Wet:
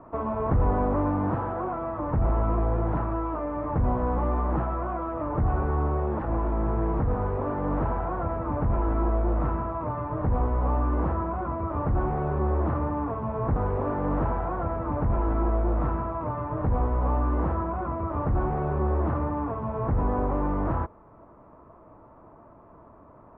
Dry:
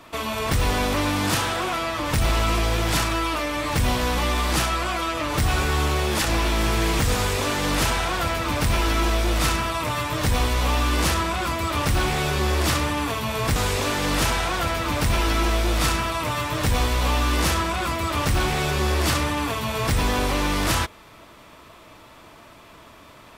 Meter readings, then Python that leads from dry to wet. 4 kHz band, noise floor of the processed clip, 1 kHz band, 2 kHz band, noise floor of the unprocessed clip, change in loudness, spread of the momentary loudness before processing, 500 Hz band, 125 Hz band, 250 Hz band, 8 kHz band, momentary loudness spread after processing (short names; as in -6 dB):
under -40 dB, -52 dBFS, -4.5 dB, -18.0 dB, -47 dBFS, -5.0 dB, 3 LU, -2.0 dB, -2.0 dB, -2.0 dB, under -40 dB, 4 LU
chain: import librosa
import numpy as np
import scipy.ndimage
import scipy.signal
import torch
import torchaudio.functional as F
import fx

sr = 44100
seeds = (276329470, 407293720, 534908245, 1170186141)

y = scipy.signal.sosfilt(scipy.signal.butter(4, 1100.0, 'lowpass', fs=sr, output='sos'), x)
y = fx.rider(y, sr, range_db=10, speed_s=2.0)
y = F.gain(torch.from_numpy(y), -2.5).numpy()